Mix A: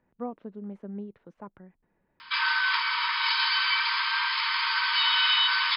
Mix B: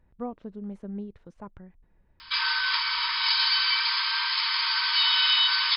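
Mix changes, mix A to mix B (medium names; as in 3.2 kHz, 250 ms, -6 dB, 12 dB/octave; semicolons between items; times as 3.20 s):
background -3.0 dB; master: remove three-band isolator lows -19 dB, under 150 Hz, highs -13 dB, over 3.2 kHz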